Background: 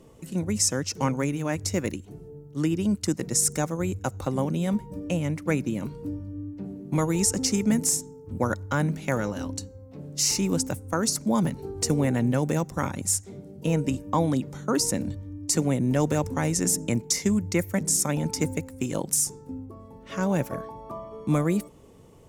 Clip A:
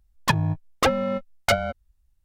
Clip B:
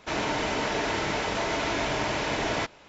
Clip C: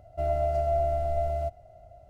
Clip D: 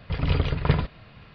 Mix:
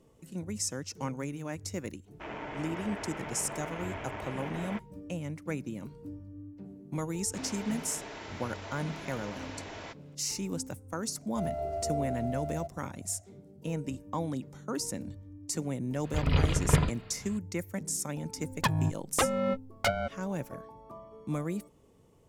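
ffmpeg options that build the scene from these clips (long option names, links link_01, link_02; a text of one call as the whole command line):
ffmpeg -i bed.wav -i cue0.wav -i cue1.wav -i cue2.wav -i cue3.wav -filter_complex "[2:a]asplit=2[link_01][link_02];[0:a]volume=-10dB[link_03];[link_01]afwtdn=0.0251[link_04];[3:a]lowshelf=frequency=66:gain=-11.5[link_05];[1:a]alimiter=limit=-15dB:level=0:latency=1:release=363[link_06];[link_04]atrim=end=2.88,asetpts=PTS-STARTPTS,volume=-11.5dB,afade=type=in:duration=0.004:curve=hsin,afade=type=out:start_time=2.876:duration=0.004:curve=hsin,adelay=2130[link_07];[link_02]atrim=end=2.88,asetpts=PTS-STARTPTS,volume=-15.5dB,afade=type=in:duration=0.004:curve=hsin,afade=type=out:start_time=2.876:duration=0.004:curve=hsin,adelay=7270[link_08];[link_05]atrim=end=2.09,asetpts=PTS-STARTPTS,volume=-7.5dB,afade=type=in:duration=0.004:curve=hsin,afade=type=out:start_time=2.086:duration=0.004:curve=hsin,adelay=11180[link_09];[4:a]atrim=end=1.34,asetpts=PTS-STARTPTS,volume=-2.5dB,afade=type=in:duration=0.004:curve=hsin,afade=type=out:start_time=1.336:duration=0.004:curve=hsin,adelay=707364S[link_10];[link_06]atrim=end=2.24,asetpts=PTS-STARTPTS,volume=-1dB,afade=type=in:duration=0.004:curve=hsin,afade=type=out:start_time=2.236:duration=0.004:curve=hsin,adelay=18360[link_11];[link_03][link_07][link_08][link_09][link_10][link_11]amix=inputs=6:normalize=0" out.wav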